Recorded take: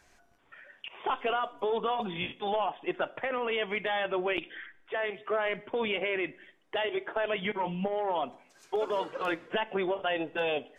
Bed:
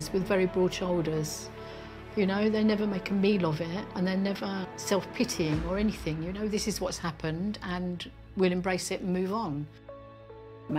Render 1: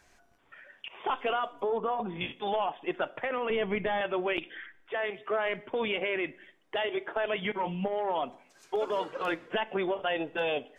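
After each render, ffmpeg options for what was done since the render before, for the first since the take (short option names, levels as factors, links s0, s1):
-filter_complex "[0:a]asettb=1/sr,asplit=3[s0][s1][s2];[s0]atrim=end=1.634[s3];[s1]atrim=start=1.63:end=2.21,asetpts=PTS-STARTPTS,afade=t=in:d=0.004:c=qsin,afade=t=out:st=0.576:d=0.004:c=qsin,lowpass=1500[s4];[s2]atrim=start=2.206[s5];[s3][s4]acrossfade=d=0.004:c1=hsin:c2=qsin[s6];[s6][s5]acrossfade=d=0.004:c1=qsin:c2=hsin,asettb=1/sr,asplit=3[s7][s8][s9];[s7]atrim=end=3.504[s10];[s8]atrim=start=3.5:end=4.01,asetpts=PTS-STARTPTS,afade=t=in:d=0.004:c=qsin,afade=t=out:st=0.506:d=0.004:c=qsin,aemphasis=mode=reproduction:type=riaa[s11];[s9]atrim=start=4.006[s12];[s10][s11]acrossfade=d=0.004:c1=hsin:c2=qsin[s13];[s13][s12]acrossfade=d=0.004:c1=qsin:c2=hsin"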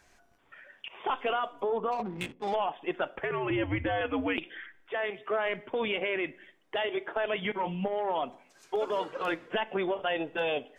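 -filter_complex "[0:a]asplit=3[s0][s1][s2];[s0]afade=t=out:st=1.91:d=0.02[s3];[s1]adynamicsmooth=sensitivity=6:basefreq=580,afade=t=in:st=1.91:d=0.02,afade=t=out:st=2.53:d=0.02[s4];[s2]afade=t=in:st=2.53:d=0.02[s5];[s3][s4][s5]amix=inputs=3:normalize=0,asplit=3[s6][s7][s8];[s6]afade=t=out:st=3.15:d=0.02[s9];[s7]afreqshift=-100,afade=t=in:st=3.15:d=0.02,afade=t=out:st=4.36:d=0.02[s10];[s8]afade=t=in:st=4.36:d=0.02[s11];[s9][s10][s11]amix=inputs=3:normalize=0"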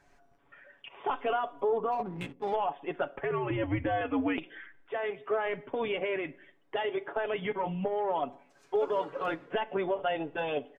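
-af "highshelf=f=2300:g=-11,aecho=1:1:7.1:0.45"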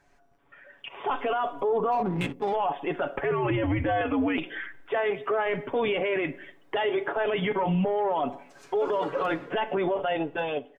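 -af "dynaudnorm=f=160:g=11:m=3.55,alimiter=limit=0.112:level=0:latency=1:release=18"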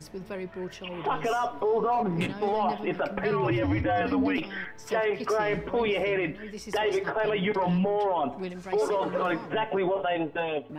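-filter_complex "[1:a]volume=0.316[s0];[0:a][s0]amix=inputs=2:normalize=0"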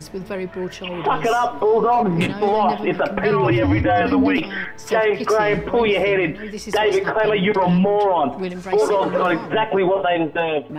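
-af "volume=2.82"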